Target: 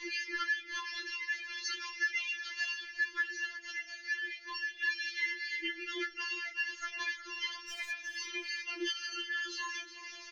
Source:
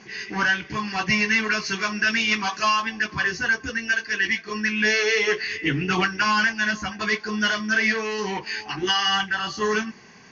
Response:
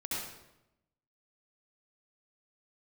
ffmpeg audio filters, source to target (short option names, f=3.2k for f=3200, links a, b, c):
-filter_complex "[0:a]equalizer=f=125:t=o:w=1:g=-10,equalizer=f=250:t=o:w=1:g=5,equalizer=f=500:t=o:w=1:g=-7,equalizer=f=1k:t=o:w=1:g=-9,equalizer=f=2k:t=o:w=1:g=8,equalizer=f=4k:t=o:w=1:g=6,acompressor=threshold=-35dB:ratio=8,flanger=delay=5.8:depth=3.3:regen=-42:speed=0.32:shape=triangular,asettb=1/sr,asplit=3[a][b][c];[a]atrim=end=7.684[d];[b]atrim=start=7.68:end=8.17,asetpts=PTS-STARTPTS,afade=t=in:d=0.004:c=qsin,afade=t=out:st=0.486:d=0.004:c=qsin,asoftclip=type=hard:threshold=-35.5dB[e];[c]atrim=start=8.166[f];[d][e]acrossfade=d=0.004:c1=hsin:c2=qsin[g];[g][f]acrossfade=d=0.004:c1=qsin:c2=hsin,aecho=1:1:362|724|1086|1448:0.224|0.0806|0.029|0.0104,afftfilt=real='re*4*eq(mod(b,16),0)':imag='im*4*eq(mod(b,16),0)':win_size=2048:overlap=0.75,volume=7dB"